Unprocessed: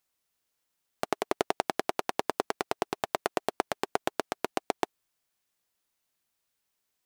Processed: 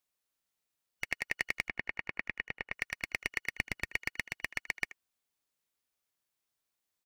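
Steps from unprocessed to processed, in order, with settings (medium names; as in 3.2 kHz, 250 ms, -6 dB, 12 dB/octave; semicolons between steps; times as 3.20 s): four frequency bands reordered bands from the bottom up 2143; 1.68–2.73 s: low-pass 2.3 kHz 12 dB/octave; 3.51–3.91 s: bass shelf 230 Hz +9 dB; speakerphone echo 80 ms, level -15 dB; trim -5.5 dB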